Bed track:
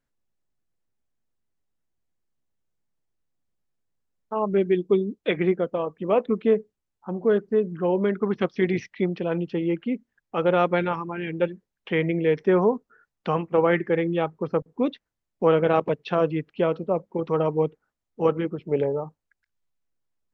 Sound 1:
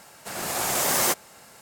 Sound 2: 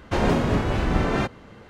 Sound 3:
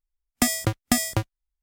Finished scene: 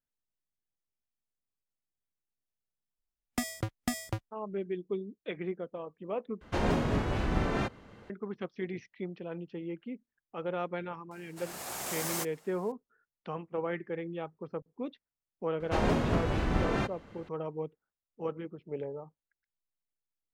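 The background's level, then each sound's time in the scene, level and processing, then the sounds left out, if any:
bed track −14 dB
0:02.96: mix in 3 −10 dB + high-shelf EQ 4,500 Hz −6.5 dB
0:06.41: overwrite with 2 −7.5 dB
0:11.11: mix in 1 −12.5 dB
0:15.60: mix in 2 −7 dB

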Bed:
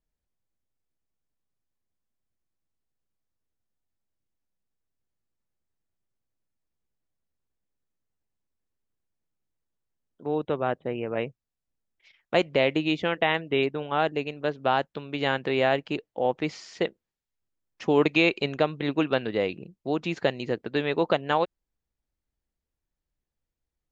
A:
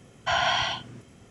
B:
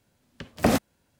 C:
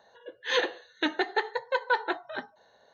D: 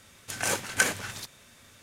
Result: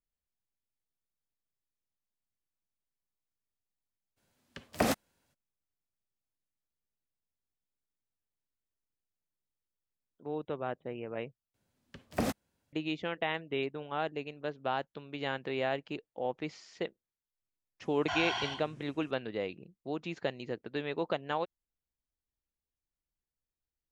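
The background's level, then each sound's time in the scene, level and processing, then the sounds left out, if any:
bed −9.5 dB
0:04.16: mix in B −4.5 dB, fades 0.02 s + low-shelf EQ 350 Hz −7 dB
0:11.54: overwrite with B −10.5 dB
0:17.81: mix in A −10.5 dB
not used: C, D

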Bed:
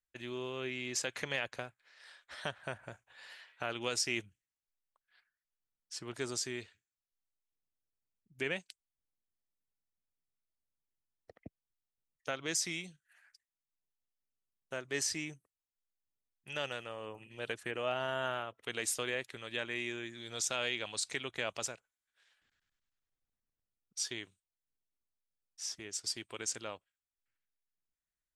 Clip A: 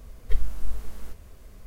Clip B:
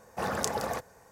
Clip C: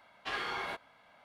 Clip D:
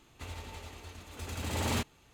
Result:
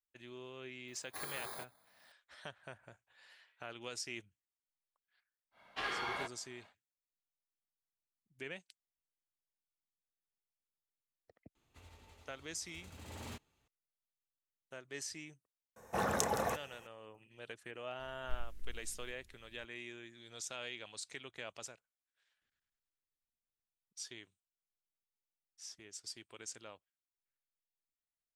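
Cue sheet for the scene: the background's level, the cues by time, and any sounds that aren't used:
bed −9.5 dB
0:00.88: mix in C −8.5 dB + samples in bit-reversed order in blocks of 16 samples
0:05.51: mix in C −2 dB, fades 0.10 s
0:11.55: mix in D −16 dB
0:15.76: mix in B −2.5 dB + notch filter 4,700 Hz, Q 6.1
0:17.99: mix in A −18 dB + flat-topped bell 830 Hz −14.5 dB

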